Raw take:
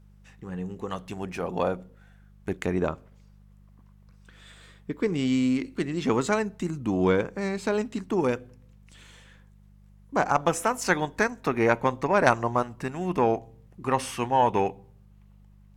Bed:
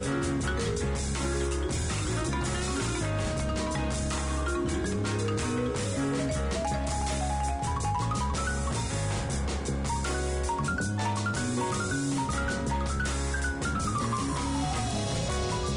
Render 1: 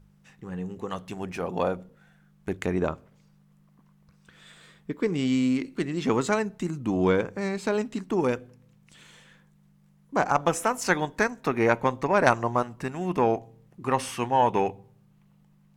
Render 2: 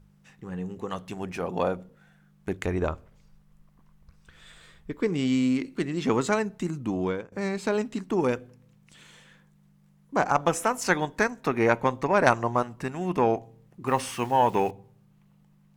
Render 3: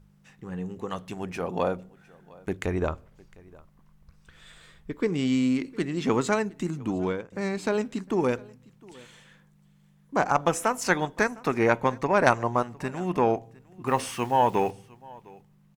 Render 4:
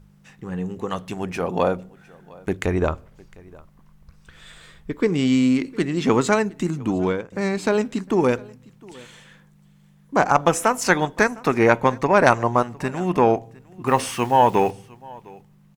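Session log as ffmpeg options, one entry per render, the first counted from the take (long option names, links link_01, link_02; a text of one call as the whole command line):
ffmpeg -i in.wav -af "bandreject=frequency=50:width_type=h:width=4,bandreject=frequency=100:width_type=h:width=4" out.wav
ffmpeg -i in.wav -filter_complex "[0:a]asplit=3[link_01][link_02][link_03];[link_01]afade=type=out:start_time=2.64:duration=0.02[link_04];[link_02]asubboost=boost=8:cutoff=66,afade=type=in:start_time=2.64:duration=0.02,afade=type=out:start_time=5.01:duration=0.02[link_05];[link_03]afade=type=in:start_time=5.01:duration=0.02[link_06];[link_04][link_05][link_06]amix=inputs=3:normalize=0,asettb=1/sr,asplit=3[link_07][link_08][link_09];[link_07]atrim=end=13.874[link_10];[link_08]atrim=start=13.87:end=14.71,asetpts=PTS-STARTPTS,afade=type=in:duration=0.004:curve=qsin,afade=type=out:start_time=0.836:duration=0.004:curve=qsin,acrusher=bits=9:dc=4:mix=0:aa=0.000001[link_11];[link_09]atrim=start=14.706[link_12];[link_10][link_11]acrossfade=duration=0.004:curve1=hsin:curve2=qsin[link_13];[link_13][link_12]acrossfade=duration=0.004:curve1=qsin:curve2=hsin,asplit=2[link_14][link_15];[link_14]atrim=end=7.32,asetpts=PTS-STARTPTS,afade=type=out:start_time=6.77:duration=0.55:silence=0.105925[link_16];[link_15]atrim=start=7.32,asetpts=PTS-STARTPTS,afade=type=in:duration=0.004:curve=hsin:silence=0.105925[link_17];[link_16][link_17]concat=n=2:v=0:a=1" out.wav
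ffmpeg -i in.wav -af "aecho=1:1:707:0.0631" out.wav
ffmpeg -i in.wav -af "volume=6dB,alimiter=limit=-1dB:level=0:latency=1" out.wav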